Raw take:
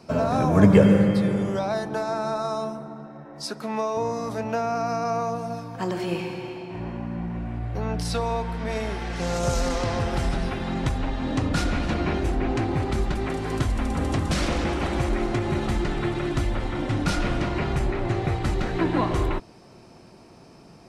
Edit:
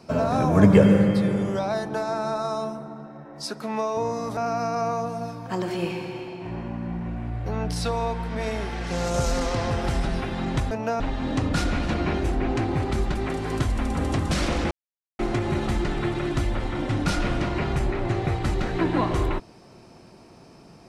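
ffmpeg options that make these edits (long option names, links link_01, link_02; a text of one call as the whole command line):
ffmpeg -i in.wav -filter_complex "[0:a]asplit=6[link_01][link_02][link_03][link_04][link_05][link_06];[link_01]atrim=end=4.372[link_07];[link_02]atrim=start=4.658:end=11.002[link_08];[link_03]atrim=start=4.368:end=4.662[link_09];[link_04]atrim=start=10.998:end=14.71,asetpts=PTS-STARTPTS,afade=type=out:start_time=3.708:duration=0.004:curve=hsin[link_10];[link_05]atrim=start=14.71:end=15.19,asetpts=PTS-STARTPTS,volume=0[link_11];[link_06]atrim=start=15.19,asetpts=PTS-STARTPTS,afade=type=in:duration=0.004:curve=hsin[link_12];[link_07][link_08]acrossfade=duration=0.004:curve1=hsin:curve2=hsin[link_13];[link_13][link_09]acrossfade=duration=0.004:curve1=hsin:curve2=hsin[link_14];[link_10][link_11][link_12]concat=n=3:v=0:a=1[link_15];[link_14][link_15]acrossfade=duration=0.004:curve1=hsin:curve2=hsin" out.wav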